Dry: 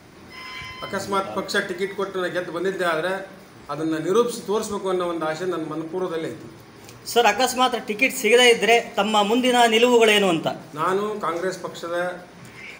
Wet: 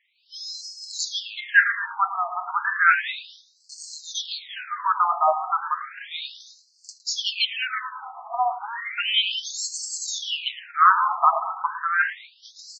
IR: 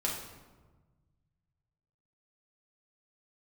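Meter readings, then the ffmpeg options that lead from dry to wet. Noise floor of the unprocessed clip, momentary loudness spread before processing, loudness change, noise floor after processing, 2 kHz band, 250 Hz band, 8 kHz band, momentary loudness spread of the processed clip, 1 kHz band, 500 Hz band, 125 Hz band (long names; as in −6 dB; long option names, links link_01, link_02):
−45 dBFS, 17 LU, −2.5 dB, −61 dBFS, +1.0 dB, below −40 dB, −1.0 dB, 16 LU, +1.0 dB, −17.5 dB, below −40 dB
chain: -filter_complex "[0:a]agate=range=-15dB:threshold=-41dB:ratio=16:detection=peak,dynaudnorm=framelen=160:gausssize=3:maxgain=8dB,acrusher=bits=5:mode=log:mix=0:aa=0.000001,asplit=2[link_01][link_02];[link_02]adelay=111,lowpass=frequency=2900:poles=1,volume=-10.5dB,asplit=2[link_03][link_04];[link_04]adelay=111,lowpass=frequency=2900:poles=1,volume=0.54,asplit=2[link_05][link_06];[link_06]adelay=111,lowpass=frequency=2900:poles=1,volume=0.54,asplit=2[link_07][link_08];[link_08]adelay=111,lowpass=frequency=2900:poles=1,volume=0.54,asplit=2[link_09][link_10];[link_10]adelay=111,lowpass=frequency=2900:poles=1,volume=0.54,asplit=2[link_11][link_12];[link_12]adelay=111,lowpass=frequency=2900:poles=1,volume=0.54[link_13];[link_03][link_05][link_07][link_09][link_11][link_13]amix=inputs=6:normalize=0[link_14];[link_01][link_14]amix=inputs=2:normalize=0,afftfilt=real='re*between(b*sr/1024,910*pow(6000/910,0.5+0.5*sin(2*PI*0.33*pts/sr))/1.41,910*pow(6000/910,0.5+0.5*sin(2*PI*0.33*pts/sr))*1.41)':imag='im*between(b*sr/1024,910*pow(6000/910,0.5+0.5*sin(2*PI*0.33*pts/sr))/1.41,910*pow(6000/910,0.5+0.5*sin(2*PI*0.33*pts/sr))*1.41)':win_size=1024:overlap=0.75,volume=3dB"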